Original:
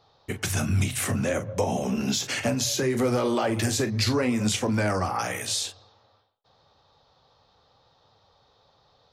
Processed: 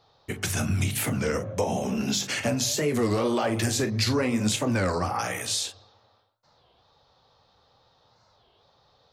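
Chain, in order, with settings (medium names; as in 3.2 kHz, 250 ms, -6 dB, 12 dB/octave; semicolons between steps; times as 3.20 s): de-hum 49.37 Hz, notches 27; warped record 33 1/3 rpm, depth 250 cents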